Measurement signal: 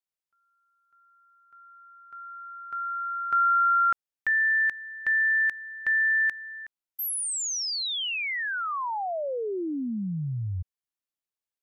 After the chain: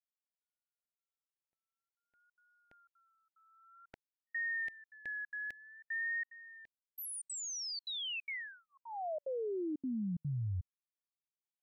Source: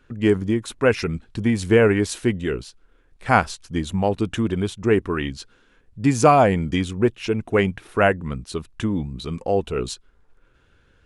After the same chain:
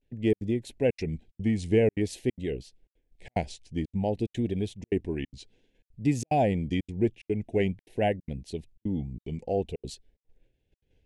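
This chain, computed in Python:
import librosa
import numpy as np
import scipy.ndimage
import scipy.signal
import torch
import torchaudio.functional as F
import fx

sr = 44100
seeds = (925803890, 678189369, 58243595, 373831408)

y = fx.gate_hold(x, sr, open_db=-47.0, close_db=-51.0, hold_ms=16.0, range_db=-9, attack_ms=5.6, release_ms=102.0)
y = fx.vibrato(y, sr, rate_hz=0.52, depth_cents=79.0)
y = scipy.signal.sosfilt(scipy.signal.cheby1(2, 1.0, [730.0, 2100.0], 'bandstop', fs=sr, output='sos'), y)
y = fx.high_shelf(y, sr, hz=9400.0, db=-5.0)
y = fx.step_gate(y, sr, bpm=183, pattern='xxxx.xxxxxx.', floor_db=-60.0, edge_ms=4.5)
y = fx.low_shelf(y, sr, hz=470.0, db=4.5)
y = F.gain(torch.from_numpy(y), -9.0).numpy()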